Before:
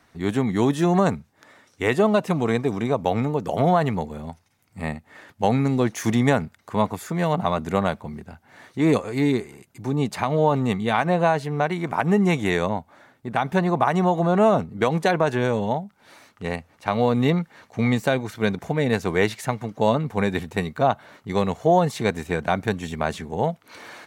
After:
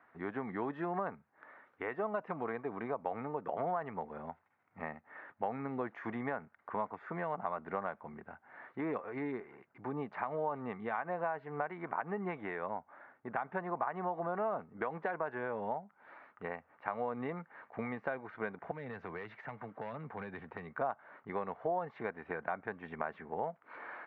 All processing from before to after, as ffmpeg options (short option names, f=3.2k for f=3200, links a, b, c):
-filter_complex "[0:a]asettb=1/sr,asplit=3[a][b][c];[a]atrim=end=18.714[d];[b]atrim=start=18.71:end=20.75,asetpts=PTS-STARTPTS,afade=t=in:d=0.004:c=qsin,afade=t=out:st=2.036:d=0.004:c=qsin,asoftclip=type=hard:threshold=-14dB,acrossover=split=150|3000[e][f][g];[f]acompressor=threshold=-33dB:ratio=5:attack=3.2:release=140:knee=2.83:detection=peak[h];[e][h][g]amix=inputs=3:normalize=0[i];[c]atrim=start=20.746[j];[d][i]acrossfade=d=0.004:c1=hsin:c2=qsin[k];[k][j]acrossfade=d=0.004:c1=qsin:c2=hsin,highpass=f=1.2k:p=1,acompressor=threshold=-36dB:ratio=3,lowpass=f=1.7k:w=0.5412,lowpass=f=1.7k:w=1.3066,volume=1dB"